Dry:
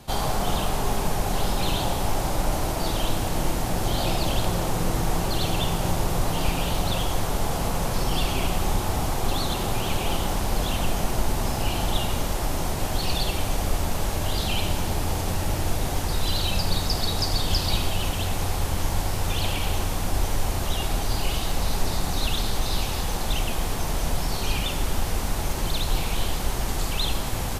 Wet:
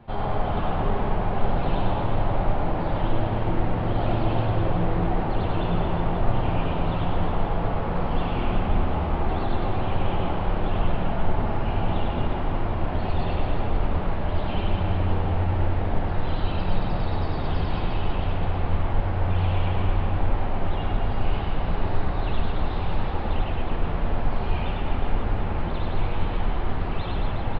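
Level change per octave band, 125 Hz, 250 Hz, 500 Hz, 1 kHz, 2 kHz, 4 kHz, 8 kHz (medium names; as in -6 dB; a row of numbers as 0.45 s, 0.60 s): +2.5 dB, +1.5 dB, +1.0 dB, +0.5 dB, -3.0 dB, -12.0 dB, under -40 dB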